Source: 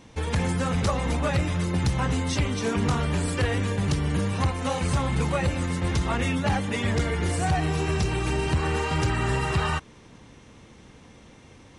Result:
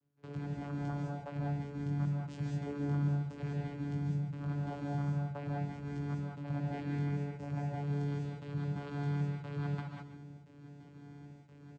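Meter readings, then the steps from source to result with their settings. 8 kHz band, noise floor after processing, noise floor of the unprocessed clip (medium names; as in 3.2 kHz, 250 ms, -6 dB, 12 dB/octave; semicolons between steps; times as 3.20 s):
under -25 dB, -56 dBFS, -51 dBFS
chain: reverse; compression 6:1, threshold -32 dBFS, peak gain reduction 12 dB; reverse; chorus 0.8 Hz, delay 16.5 ms, depth 4.9 ms; trance gate "..xx.xxxx" 132 bpm -24 dB; vocoder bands 8, saw 143 Hz; on a send: delay 139 ms -12 dB; on the sum: gated-style reverb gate 230 ms rising, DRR -1.5 dB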